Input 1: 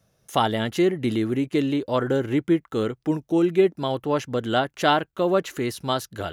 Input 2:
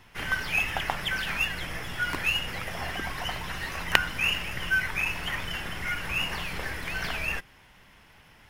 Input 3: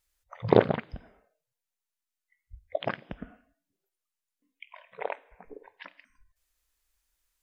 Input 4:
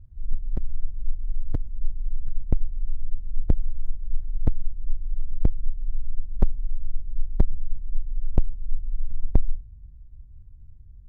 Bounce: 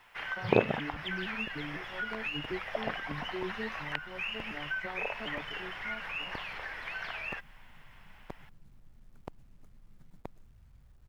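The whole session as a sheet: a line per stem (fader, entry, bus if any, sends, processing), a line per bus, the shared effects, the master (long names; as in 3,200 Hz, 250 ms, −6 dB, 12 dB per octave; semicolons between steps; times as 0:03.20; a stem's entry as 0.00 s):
−19.5 dB, 0.00 s, no send, vocoder with an arpeggio as carrier major triad, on D3, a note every 250 ms
0.0 dB, 0.00 s, no send, high-shelf EQ 3,900 Hz −7.5 dB; downward compressor 5 to 1, threshold −33 dBFS, peak gain reduction 16.5 dB; three-way crossover with the lows and the highs turned down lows −17 dB, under 550 Hz, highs −15 dB, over 4,700 Hz
−5.5 dB, 0.00 s, no send, no processing
−18.0 dB, 0.90 s, no send, every bin compressed towards the loudest bin 4 to 1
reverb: not used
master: bit reduction 12 bits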